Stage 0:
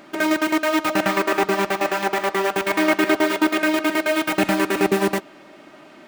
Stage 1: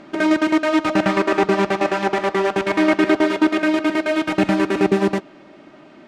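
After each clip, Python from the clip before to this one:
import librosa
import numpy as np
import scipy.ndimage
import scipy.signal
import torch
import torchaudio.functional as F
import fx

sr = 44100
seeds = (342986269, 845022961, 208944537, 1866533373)

y = scipy.signal.sosfilt(scipy.signal.butter(2, 6200.0, 'lowpass', fs=sr, output='sos'), x)
y = fx.low_shelf(y, sr, hz=450.0, db=8.0)
y = fx.rider(y, sr, range_db=10, speed_s=2.0)
y = F.gain(torch.from_numpy(y), -1.5).numpy()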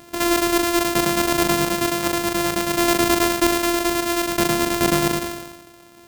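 y = np.r_[np.sort(x[:len(x) // 128 * 128].reshape(-1, 128), axis=1).ravel(), x[len(x) // 128 * 128:]]
y = fx.high_shelf(y, sr, hz=6200.0, db=6.5)
y = fx.sustainer(y, sr, db_per_s=50.0)
y = F.gain(torch.from_numpy(y), -3.5).numpy()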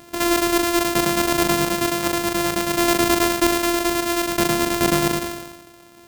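y = x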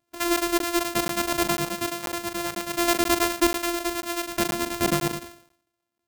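y = fx.bin_expand(x, sr, power=2.0)
y = fx.buffer_crackle(y, sr, first_s=0.59, period_s=0.49, block=512, kind='zero')
y = F.gain(torch.from_numpy(y), -1.0).numpy()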